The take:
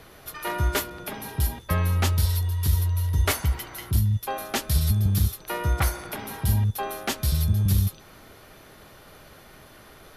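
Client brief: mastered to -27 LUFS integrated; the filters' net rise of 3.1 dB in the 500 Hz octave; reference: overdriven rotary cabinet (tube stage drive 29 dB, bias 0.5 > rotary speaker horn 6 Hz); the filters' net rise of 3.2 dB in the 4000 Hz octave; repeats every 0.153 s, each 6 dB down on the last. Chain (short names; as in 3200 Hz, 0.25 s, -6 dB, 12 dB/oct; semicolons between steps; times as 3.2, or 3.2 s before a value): bell 500 Hz +4 dB; bell 4000 Hz +4 dB; feedback echo 0.153 s, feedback 50%, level -6 dB; tube stage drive 29 dB, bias 0.5; rotary speaker horn 6 Hz; gain +8 dB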